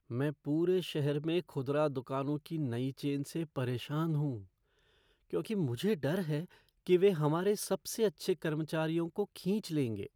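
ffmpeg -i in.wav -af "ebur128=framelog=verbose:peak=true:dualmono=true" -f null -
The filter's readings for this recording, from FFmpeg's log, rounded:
Integrated loudness:
  I:         -31.0 LUFS
  Threshold: -41.2 LUFS
Loudness range:
  LRA:         4.5 LU
  Threshold: -51.4 LUFS
  LRA low:   -34.1 LUFS
  LRA high:  -29.7 LUFS
True peak:
  Peak:      -16.8 dBFS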